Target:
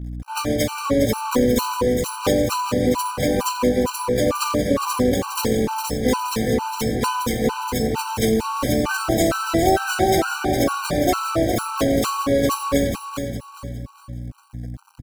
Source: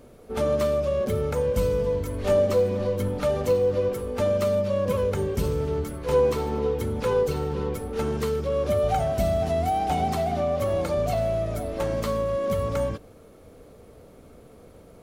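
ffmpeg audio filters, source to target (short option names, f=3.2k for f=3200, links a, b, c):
-filter_complex "[0:a]highpass=120,bandreject=f=50:t=h:w=6,bandreject=f=100:t=h:w=6,bandreject=f=150:t=h:w=6,bandreject=f=200:t=h:w=6,bandreject=f=250:t=h:w=6,bandreject=f=300:t=h:w=6,bandreject=f=350:t=h:w=6,aecho=1:1:4.1:0.65,acrossover=split=170|3000[a][b][c];[b]acompressor=threshold=-26dB:ratio=6[d];[a][d][c]amix=inputs=3:normalize=0,acrossover=split=370|4700[e][f][g];[e]alimiter=level_in=8.5dB:limit=-24dB:level=0:latency=1:release=36,volume=-8.5dB[h];[g]acontrast=57[i];[h][f][i]amix=inputs=3:normalize=0,asplit=4[j][k][l][m];[k]asetrate=22050,aresample=44100,atempo=2,volume=0dB[n];[l]asetrate=33038,aresample=44100,atempo=1.33484,volume=-9dB[o];[m]asetrate=88200,aresample=44100,atempo=0.5,volume=-5dB[p];[j][n][o][p]amix=inputs=4:normalize=0,aeval=exprs='sgn(val(0))*max(abs(val(0))-0.0106,0)':c=same,aeval=exprs='val(0)+0.0141*(sin(2*PI*60*n/s)+sin(2*PI*2*60*n/s)/2+sin(2*PI*3*60*n/s)/3+sin(2*PI*4*60*n/s)/4+sin(2*PI*5*60*n/s)/5)':c=same,asplit=2[q][r];[r]aecho=0:1:409|818|1227|1636:0.447|0.161|0.0579|0.0208[s];[q][s]amix=inputs=2:normalize=0,afftfilt=real='re*gt(sin(2*PI*2.2*pts/sr)*(1-2*mod(floor(b*sr/1024/780),2)),0)':imag='im*gt(sin(2*PI*2.2*pts/sr)*(1-2*mod(floor(b*sr/1024/780),2)),0)':win_size=1024:overlap=0.75,volume=8.5dB"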